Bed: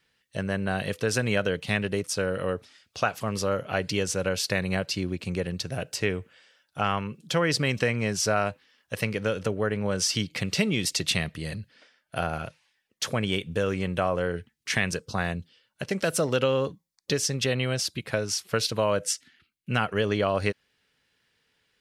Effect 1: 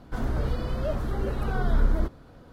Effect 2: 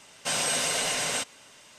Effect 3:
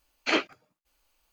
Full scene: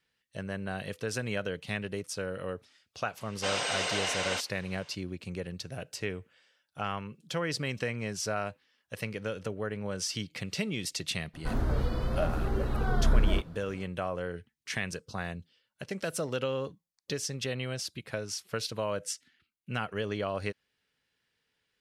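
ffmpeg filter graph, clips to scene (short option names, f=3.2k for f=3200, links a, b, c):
-filter_complex "[0:a]volume=-8dB[a];[2:a]highpass=320,lowpass=4.6k,atrim=end=1.78,asetpts=PTS-STARTPTS,volume=-1.5dB,afade=t=in:d=0.004:c=hsin,afade=t=out:st=1.776:d=0.004:c=hsin,adelay=139797S[b];[1:a]atrim=end=2.52,asetpts=PTS-STARTPTS,volume=-1.5dB,afade=t=in:d=0.02,afade=t=out:st=2.5:d=0.02,adelay=11330[c];[a][b][c]amix=inputs=3:normalize=0"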